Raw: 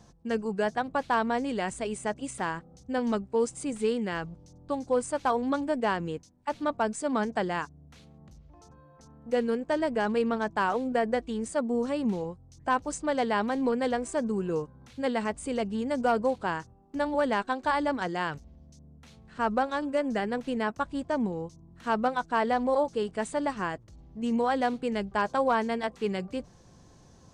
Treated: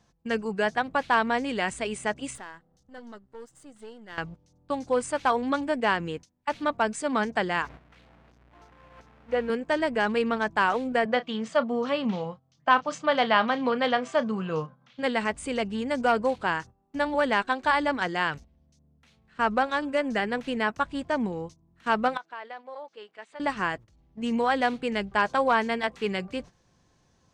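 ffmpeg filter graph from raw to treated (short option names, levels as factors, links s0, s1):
-filter_complex "[0:a]asettb=1/sr,asplit=3[s0][s1][s2];[s0]atrim=end=2.354[s3];[s1]atrim=start=2.35:end=4.18,asetpts=PTS-STARTPTS,afade=t=in:d=0.004:c=qsin,afade=t=out:st=1.826:d=0.004:c=qsin,aeval=exprs='if(lt(val(0),0),0.447*val(0),val(0))':c=same,equalizer=f=2400:t=o:w=0.21:g=-14.5,acompressor=threshold=0.01:ratio=6:attack=3.2:release=140:knee=1:detection=peak[s4];[s2]atrim=start=4.176[s5];[s3][s4]acrossfade=d=0.004:c1=hsin:c2=qsin[s6];[s6][s5]acrossfade=d=0.004:c1=qsin:c2=hsin,asettb=1/sr,asplit=3[s7][s8][s9];[s7]atrim=end=7.624[s10];[s8]atrim=start=7.62:end=9.5,asetpts=PTS-STARTPTS,afade=t=in:d=0.004:c=qsin,afade=t=out:st=1.876:d=0.004:c=qsin,aeval=exprs='val(0)+0.5*0.00944*sgn(val(0))':c=same,bandpass=f=780:t=q:w=0.55,aeval=exprs='val(0)+0.00398*(sin(2*PI*60*n/s)+sin(2*PI*2*60*n/s)/2+sin(2*PI*3*60*n/s)/3+sin(2*PI*4*60*n/s)/4+sin(2*PI*5*60*n/s)/5)':c=same[s11];[s9]atrim=start=9.496[s12];[s10][s11]acrossfade=d=0.004:c1=hsin:c2=qsin[s13];[s13][s12]acrossfade=d=0.004:c1=qsin:c2=hsin,asettb=1/sr,asplit=3[s14][s15][s16];[s14]atrim=end=11.054[s17];[s15]atrim=start=11.05:end=15.03,asetpts=PTS-STARTPTS,afade=t=in:d=0.004:c=qsin,afade=t=out:st=3.976:d=0.004:c=qsin,highpass=f=130:w=0.5412,highpass=f=130:w=1.3066,equalizer=f=150:t=q:w=4:g=5,equalizer=f=370:t=q:w=4:g=-9,equalizer=f=640:t=q:w=4:g=6,equalizer=f=1200:t=q:w=4:g=7,equalizer=f=3200:t=q:w=4:g=6,lowpass=f=5900:w=0.5412,lowpass=f=5900:w=1.3066,asplit=2[s18][s19];[s19]adelay=32,volume=0.2[s20];[s18][s20]amix=inputs=2:normalize=0,atrim=end_sample=175518[s21];[s16]atrim=start=15.026[s22];[s17][s21]acrossfade=d=0.004:c1=hsin:c2=qsin[s23];[s23][s22]acrossfade=d=0.004:c1=qsin:c2=hsin,asettb=1/sr,asplit=3[s24][s25][s26];[s24]atrim=end=22.174[s27];[s25]atrim=start=22.17:end=23.4,asetpts=PTS-STARTPTS,afade=t=in:d=0.004:c=qsin,afade=t=out:st=1.226:d=0.004:c=qsin,highpass=480,lowpass=4600,acompressor=threshold=0.00708:ratio=3:attack=3.2:release=140:knee=1:detection=peak[s28];[s26]atrim=start=23.396[s29];[s27][s28]acrossfade=d=0.004:c1=hsin:c2=qsin[s30];[s30][s29]acrossfade=d=0.004:c1=qsin:c2=hsin,equalizer=f=2300:w=0.65:g=8,agate=range=0.282:threshold=0.00891:ratio=16:detection=peak"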